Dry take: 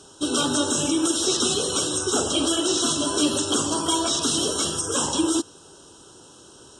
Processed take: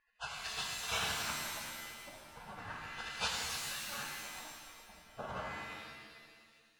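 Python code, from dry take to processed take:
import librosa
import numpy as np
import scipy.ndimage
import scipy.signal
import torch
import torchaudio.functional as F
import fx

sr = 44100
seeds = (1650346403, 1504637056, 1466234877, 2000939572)

y = fx.spec_gate(x, sr, threshold_db=-30, keep='weak')
y = fx.filter_lfo_lowpass(y, sr, shape='sine', hz=0.36, low_hz=570.0, high_hz=4000.0, q=1.0)
y = fx.rev_shimmer(y, sr, seeds[0], rt60_s=1.6, semitones=7, shimmer_db=-2, drr_db=0.0)
y = F.gain(torch.from_numpy(y), 4.0).numpy()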